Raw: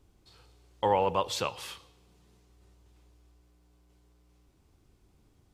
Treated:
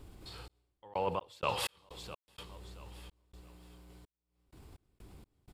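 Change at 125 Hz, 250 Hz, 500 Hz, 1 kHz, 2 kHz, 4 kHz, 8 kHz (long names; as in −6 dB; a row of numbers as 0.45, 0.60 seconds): −3.5, −6.5, −8.0, −7.5, −1.5, −3.5, −4.5 decibels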